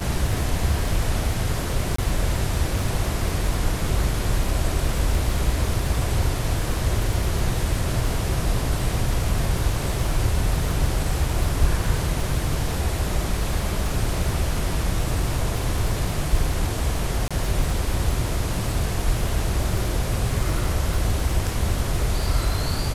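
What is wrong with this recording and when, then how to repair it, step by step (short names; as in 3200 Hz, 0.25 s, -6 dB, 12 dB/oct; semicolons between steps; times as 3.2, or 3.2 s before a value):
crackle 50/s -27 dBFS
1.96–1.98 gap 24 ms
17.28–17.31 gap 26 ms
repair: de-click; interpolate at 1.96, 24 ms; interpolate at 17.28, 26 ms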